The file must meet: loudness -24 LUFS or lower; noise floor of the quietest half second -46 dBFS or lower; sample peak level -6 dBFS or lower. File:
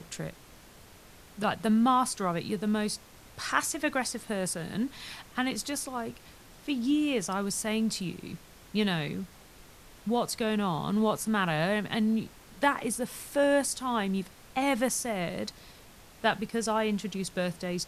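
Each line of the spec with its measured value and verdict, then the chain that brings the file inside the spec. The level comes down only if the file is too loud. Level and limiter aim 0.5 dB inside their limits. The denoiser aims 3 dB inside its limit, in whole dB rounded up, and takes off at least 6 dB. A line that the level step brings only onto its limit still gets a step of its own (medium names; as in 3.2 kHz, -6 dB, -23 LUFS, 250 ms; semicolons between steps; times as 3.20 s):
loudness -30.0 LUFS: pass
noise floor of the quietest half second -53 dBFS: pass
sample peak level -9.5 dBFS: pass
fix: none needed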